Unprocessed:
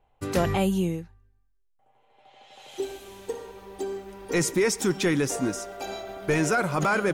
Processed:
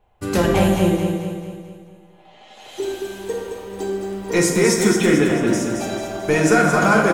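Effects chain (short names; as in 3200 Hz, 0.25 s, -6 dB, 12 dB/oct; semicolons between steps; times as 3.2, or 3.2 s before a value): 4.94–5.47 steep low-pass 3500 Hz 48 dB/oct; feedback echo 0.22 s, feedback 48%, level -6 dB; reverb RT60 1.3 s, pre-delay 5 ms, DRR 0 dB; gain +4 dB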